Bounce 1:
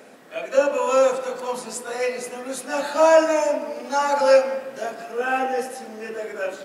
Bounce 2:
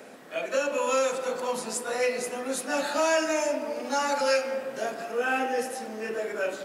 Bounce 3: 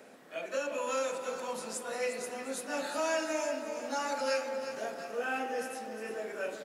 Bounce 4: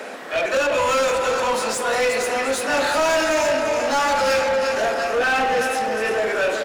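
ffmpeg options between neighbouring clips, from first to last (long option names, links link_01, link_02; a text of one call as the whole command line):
ffmpeg -i in.wav -filter_complex "[0:a]acrossover=split=490|1500[link_01][link_02][link_03];[link_01]alimiter=limit=-24dB:level=0:latency=1:release=224[link_04];[link_02]acompressor=threshold=-31dB:ratio=6[link_05];[link_04][link_05][link_03]amix=inputs=3:normalize=0" out.wav
ffmpeg -i in.wav -af "aecho=1:1:355|710|1065|1420|1775:0.316|0.142|0.064|0.0288|0.013,volume=-7.5dB" out.wav
ffmpeg -i in.wav -filter_complex "[0:a]asplit=2[link_01][link_02];[link_02]highpass=frequency=720:poles=1,volume=23dB,asoftclip=type=tanh:threshold=-20dB[link_03];[link_01][link_03]amix=inputs=2:normalize=0,lowpass=frequency=3500:poles=1,volume=-6dB,volume=8dB" out.wav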